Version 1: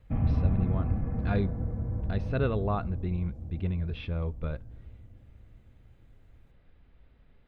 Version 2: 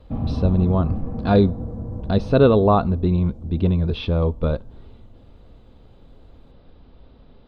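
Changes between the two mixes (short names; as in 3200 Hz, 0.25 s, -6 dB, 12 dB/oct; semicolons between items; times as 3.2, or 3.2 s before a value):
speech +9.5 dB; master: add graphic EQ 250/500/1000/2000/4000/8000 Hz +6/+5/+6/-10/+8/+4 dB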